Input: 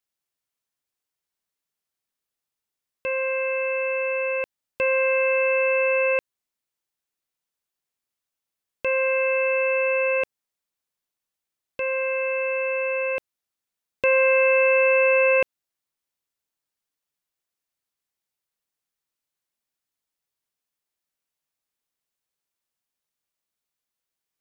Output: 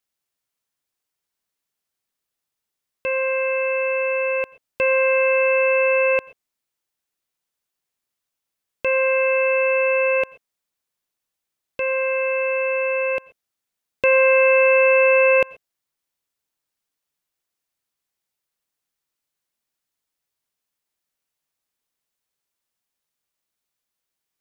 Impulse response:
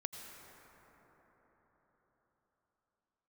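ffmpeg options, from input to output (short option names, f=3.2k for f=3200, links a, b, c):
-filter_complex "[0:a]asplit=2[a][b];[1:a]atrim=start_sample=2205,atrim=end_sample=6174[c];[b][c]afir=irnorm=-1:irlink=0,volume=-4dB[d];[a][d]amix=inputs=2:normalize=0"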